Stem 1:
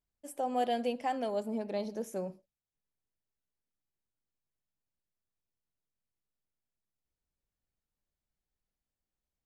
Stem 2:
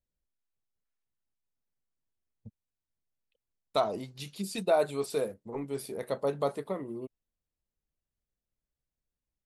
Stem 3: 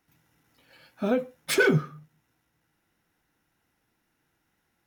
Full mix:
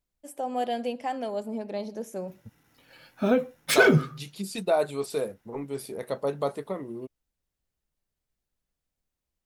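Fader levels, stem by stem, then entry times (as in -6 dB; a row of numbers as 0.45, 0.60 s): +2.0, +1.5, +2.5 dB; 0.00, 0.00, 2.20 s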